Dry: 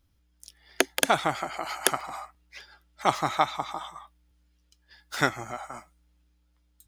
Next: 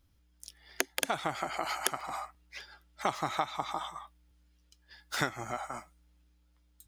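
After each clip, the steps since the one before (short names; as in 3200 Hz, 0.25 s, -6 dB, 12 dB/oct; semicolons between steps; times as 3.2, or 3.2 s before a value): compressor 6:1, threshold -27 dBFS, peak gain reduction 11.5 dB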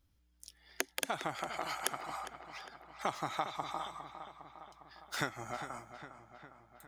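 darkening echo 0.406 s, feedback 62%, low-pass 4000 Hz, level -10.5 dB; gain -4.5 dB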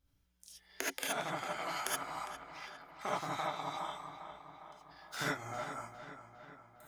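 non-linear reverb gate 0.1 s rising, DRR -5.5 dB; gain -6 dB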